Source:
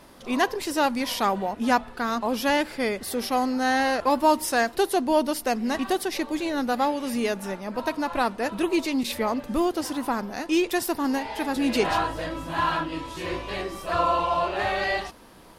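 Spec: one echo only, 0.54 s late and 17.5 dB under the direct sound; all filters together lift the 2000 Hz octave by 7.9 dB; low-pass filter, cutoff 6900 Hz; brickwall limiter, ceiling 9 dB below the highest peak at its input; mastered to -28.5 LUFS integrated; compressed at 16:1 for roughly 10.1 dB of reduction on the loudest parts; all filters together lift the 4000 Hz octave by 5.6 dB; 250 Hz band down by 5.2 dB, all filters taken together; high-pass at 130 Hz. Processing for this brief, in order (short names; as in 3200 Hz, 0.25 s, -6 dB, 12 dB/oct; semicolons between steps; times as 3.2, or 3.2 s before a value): HPF 130 Hz; LPF 6900 Hz; bell 250 Hz -6.5 dB; bell 2000 Hz +9 dB; bell 4000 Hz +4.5 dB; compressor 16:1, threshold -23 dBFS; limiter -20.5 dBFS; echo 0.54 s -17.5 dB; gain +1.5 dB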